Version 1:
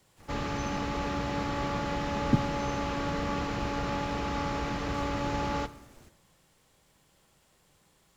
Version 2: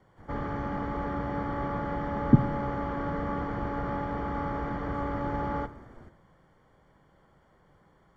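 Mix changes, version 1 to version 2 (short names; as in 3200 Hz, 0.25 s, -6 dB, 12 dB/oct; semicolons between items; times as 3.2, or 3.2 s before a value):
speech +6.0 dB; master: add polynomial smoothing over 41 samples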